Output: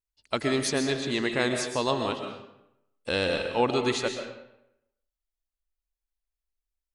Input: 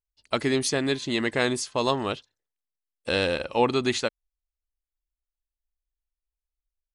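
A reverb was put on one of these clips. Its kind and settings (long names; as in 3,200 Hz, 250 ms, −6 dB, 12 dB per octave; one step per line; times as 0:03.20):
comb and all-pass reverb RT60 0.83 s, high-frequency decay 0.75×, pre-delay 90 ms, DRR 5 dB
level −2.5 dB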